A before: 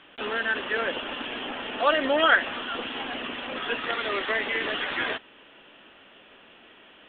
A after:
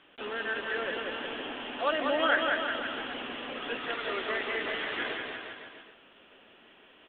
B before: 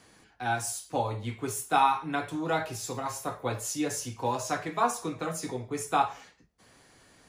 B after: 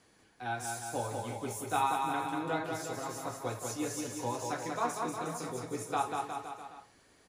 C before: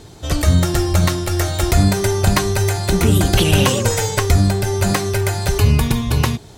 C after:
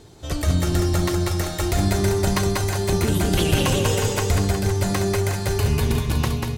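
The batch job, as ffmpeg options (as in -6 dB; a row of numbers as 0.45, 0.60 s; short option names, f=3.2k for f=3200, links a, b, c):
-filter_complex "[0:a]equalizer=f=400:w=1.5:g=2.5,asplit=2[a][b];[b]aecho=0:1:190|361|514.9|653.4|778.1:0.631|0.398|0.251|0.158|0.1[c];[a][c]amix=inputs=2:normalize=0,volume=-7.5dB"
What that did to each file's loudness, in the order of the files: -5.0, -5.0, -5.0 LU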